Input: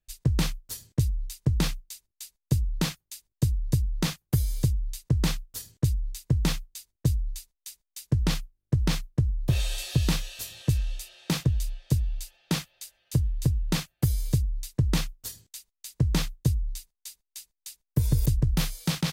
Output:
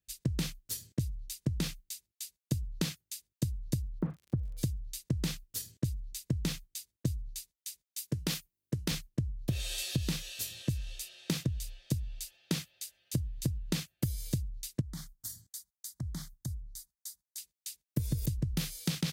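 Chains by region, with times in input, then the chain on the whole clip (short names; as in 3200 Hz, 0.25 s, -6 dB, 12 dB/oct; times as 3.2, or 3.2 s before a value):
3.98–4.57 LPF 1200 Hz 24 dB/oct + crackle 62/s -45 dBFS
7.98–8.91 HPF 240 Hz 6 dB/oct + high shelf 11000 Hz +8.5 dB
14.81–17.38 compressor 3:1, threshold -34 dBFS + fixed phaser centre 1100 Hz, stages 4
whole clip: HPF 69 Hz 12 dB/oct; bell 930 Hz -9 dB 1.5 oct; compressor 6:1, threshold -28 dBFS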